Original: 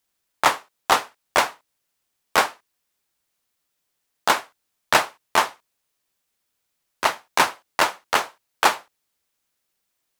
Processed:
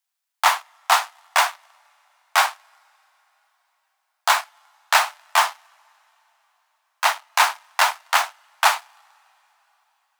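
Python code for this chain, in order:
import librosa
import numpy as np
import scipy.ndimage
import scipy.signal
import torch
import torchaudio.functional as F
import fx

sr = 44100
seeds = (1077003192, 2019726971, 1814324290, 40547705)

p1 = fx.rev_double_slope(x, sr, seeds[0], early_s=0.3, late_s=4.4, knee_db=-20, drr_db=15.5)
p2 = fx.leveller(p1, sr, passes=2)
p3 = (np.mod(10.0 ** (13.0 / 20.0) * p2 + 1.0, 2.0) - 1.0) / 10.0 ** (13.0 / 20.0)
p4 = p2 + F.gain(torch.from_numpy(p3), -11.0).numpy()
p5 = scipy.signal.sosfilt(scipy.signal.butter(8, 680.0, 'highpass', fs=sr, output='sos'), p4)
y = F.gain(torch.from_numpy(p5), -3.5).numpy()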